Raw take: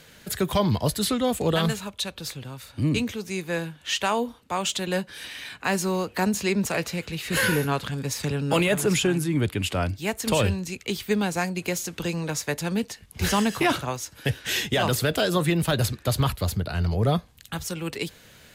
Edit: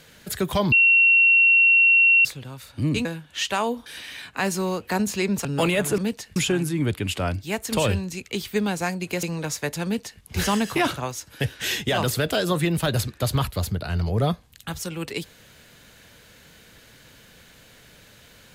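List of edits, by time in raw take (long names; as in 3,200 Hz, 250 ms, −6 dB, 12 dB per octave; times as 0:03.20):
0:00.72–0:02.25: beep over 2,730 Hz −12.5 dBFS
0:03.05–0:03.56: remove
0:04.37–0:05.13: remove
0:06.72–0:08.38: remove
0:11.78–0:12.08: remove
0:12.69–0:13.07: duplicate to 0:08.91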